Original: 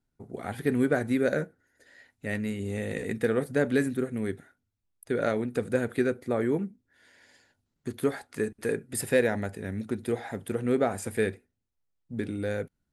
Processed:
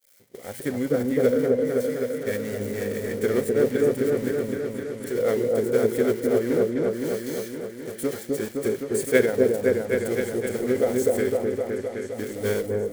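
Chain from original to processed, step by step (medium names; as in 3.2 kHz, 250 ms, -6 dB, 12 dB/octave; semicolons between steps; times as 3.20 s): zero-crossing glitches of -27 dBFS; expander -31 dBFS; in parallel at -9 dB: bit crusher 5-bit; on the sum: small resonant body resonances 540/2300 Hz, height 15 dB, ringing for 30 ms; formant shift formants -2 st; on a send: delay with an opening low-pass 258 ms, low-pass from 750 Hz, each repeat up 1 oct, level 0 dB; on the sum: trim -7.5 dB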